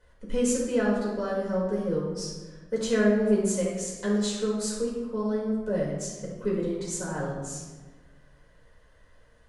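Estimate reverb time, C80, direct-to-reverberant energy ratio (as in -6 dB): 1.3 s, 4.0 dB, -6.0 dB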